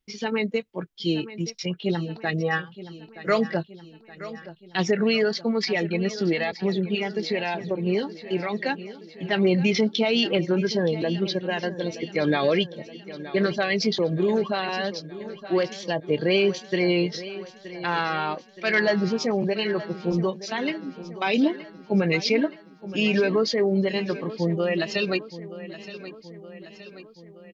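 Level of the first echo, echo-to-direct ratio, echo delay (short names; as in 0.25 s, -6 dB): -15.0 dB, -13.5 dB, 0.922 s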